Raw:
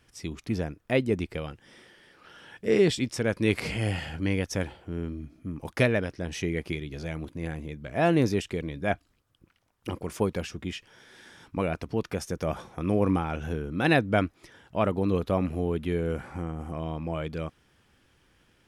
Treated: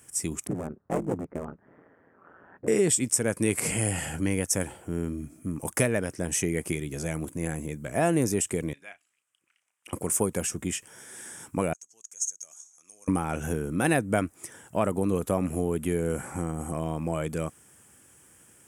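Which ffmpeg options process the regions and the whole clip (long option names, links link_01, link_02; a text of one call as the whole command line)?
ffmpeg -i in.wav -filter_complex "[0:a]asettb=1/sr,asplit=3[link_01][link_02][link_03];[link_01]atrim=end=0.474[link_04];[link_02]atrim=start=0.47:end=2.68,asetpts=PTS-STARTPTS,afade=type=in:duration=0.004:curve=qsin,afade=type=out:start_time=2.206:duration=0.004:curve=qsin,lowpass=frequency=1400:width=0.5412,lowpass=frequency=1400:width=1.3066,aeval=exprs='val(0)*sin(2*PI*85*n/s)':channel_layout=same,aeval=exprs='clip(val(0),-1,0.0237)':channel_layout=same[link_05];[link_03]atrim=start=2.676[link_06];[link_04][link_05]acrossfade=duration=0.004:curve1=hsin:curve2=qsin[link_07];[link_07][link_06]acrossfade=duration=0.004:curve1=qsin:curve2=hsin,asettb=1/sr,asplit=3[link_08][link_09][link_10];[link_08]atrim=end=8.734[link_11];[link_09]atrim=start=8.73:end=9.93,asetpts=PTS-STARTPTS,afade=type=in:duration=0.004:curve=qsin,afade=type=out:start_time=1.196:duration=0.004:curve=qsin,acompressor=threshold=-31dB:ratio=6:attack=3.2:release=140:knee=1:detection=peak,bandpass=frequency=2600:width_type=q:width=2,asplit=2[link_12][link_13];[link_13]adelay=33,volume=-11dB[link_14];[link_12][link_14]amix=inputs=2:normalize=0,atrim=end_sample=52920[link_15];[link_10]atrim=start=9.926[link_16];[link_11][link_15]acrossfade=duration=0.004:curve1=hsin:curve2=qsin[link_17];[link_17][link_16]acrossfade=duration=0.004:curve1=qsin:curve2=hsin,asettb=1/sr,asplit=3[link_18][link_19][link_20];[link_18]atrim=end=11.734[link_21];[link_19]atrim=start=11.73:end=13.08,asetpts=PTS-STARTPTS,afade=type=in:duration=0.004:curve=qsin,afade=type=out:start_time=1.346:duration=0.004:curve=qsin,bandpass=frequency=6500:width_type=q:width=15,acontrast=71[link_22];[link_20]atrim=start=13.076[link_23];[link_21][link_22]acrossfade=duration=0.004:curve1=hsin:curve2=qsin[link_24];[link_24][link_23]acrossfade=duration=0.004:curve1=qsin:curve2=hsin,highpass=94,highshelf=frequency=5900:width_type=q:width=3:gain=13,acompressor=threshold=-28dB:ratio=2,volume=4dB" out.wav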